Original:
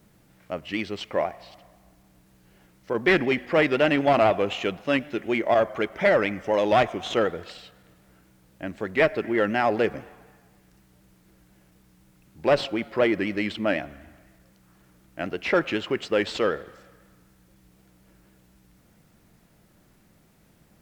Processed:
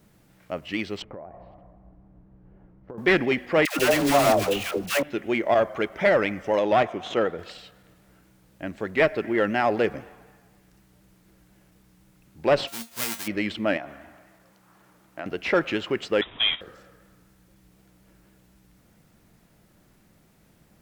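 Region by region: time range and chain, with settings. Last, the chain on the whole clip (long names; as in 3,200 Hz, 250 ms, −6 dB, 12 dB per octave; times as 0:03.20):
0:01.02–0:02.98: low-pass filter 1,100 Hz + spectral tilt −2 dB per octave + downward compressor 20 to 1, threshold −35 dBFS
0:03.65–0:05.03: one scale factor per block 3 bits + all-pass dispersion lows, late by 138 ms, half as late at 610 Hz
0:06.59–0:07.39: high-pass filter 120 Hz 6 dB per octave + high-shelf EQ 3,300 Hz −7.5 dB
0:12.67–0:13.26: spectral envelope flattened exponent 0.1 + tuned comb filter 230 Hz, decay 0.2 s, mix 80%
0:13.77–0:15.26: high-pass filter 170 Hz 6 dB per octave + parametric band 960 Hz +7.5 dB 1.5 octaves + downward compressor 3 to 1, threshold −32 dBFS
0:16.21–0:16.61: linear delta modulator 32 kbit/s, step −25.5 dBFS + noise gate −28 dBFS, range −12 dB + voice inversion scrambler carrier 3,700 Hz
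whole clip: no processing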